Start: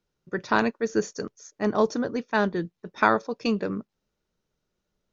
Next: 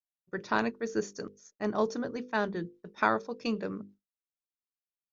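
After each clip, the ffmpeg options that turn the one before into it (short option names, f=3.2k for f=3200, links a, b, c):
-af "bandreject=f=50:t=h:w=6,bandreject=f=100:t=h:w=6,bandreject=f=150:t=h:w=6,bandreject=f=200:t=h:w=6,bandreject=f=250:t=h:w=6,bandreject=f=300:t=h:w=6,bandreject=f=350:t=h:w=6,bandreject=f=400:t=h:w=6,bandreject=f=450:t=h:w=6,bandreject=f=500:t=h:w=6,agate=range=-33dB:threshold=-42dB:ratio=3:detection=peak,volume=-6dB"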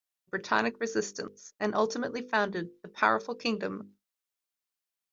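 -filter_complex "[0:a]asplit=2[a][b];[b]alimiter=limit=-19dB:level=0:latency=1,volume=1dB[c];[a][c]amix=inputs=2:normalize=0,lowshelf=f=480:g=-8.5"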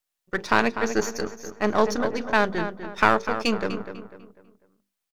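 -filter_complex "[0:a]aeval=exprs='if(lt(val(0),0),0.447*val(0),val(0))':c=same,asplit=2[a][b];[b]adelay=248,lowpass=f=2.9k:p=1,volume=-9.5dB,asplit=2[c][d];[d]adelay=248,lowpass=f=2.9k:p=1,volume=0.38,asplit=2[e][f];[f]adelay=248,lowpass=f=2.9k:p=1,volume=0.38,asplit=2[g][h];[h]adelay=248,lowpass=f=2.9k:p=1,volume=0.38[i];[c][e][g][i]amix=inputs=4:normalize=0[j];[a][j]amix=inputs=2:normalize=0,volume=8dB"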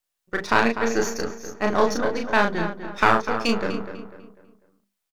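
-filter_complex "[0:a]asplit=2[a][b];[b]adelay=35,volume=-3.5dB[c];[a][c]amix=inputs=2:normalize=0"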